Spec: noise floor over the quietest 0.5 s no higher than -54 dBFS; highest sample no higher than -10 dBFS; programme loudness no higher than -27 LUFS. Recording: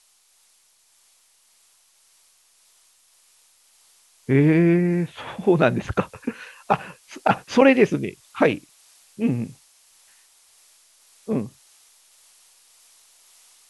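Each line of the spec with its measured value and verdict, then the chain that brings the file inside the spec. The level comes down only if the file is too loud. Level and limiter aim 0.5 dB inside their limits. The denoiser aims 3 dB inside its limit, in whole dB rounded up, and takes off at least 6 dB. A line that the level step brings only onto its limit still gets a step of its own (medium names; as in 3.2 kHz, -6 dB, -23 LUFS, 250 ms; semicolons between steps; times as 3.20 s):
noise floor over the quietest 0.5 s -60 dBFS: pass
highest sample -4.5 dBFS: fail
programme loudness -21.5 LUFS: fail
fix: trim -6 dB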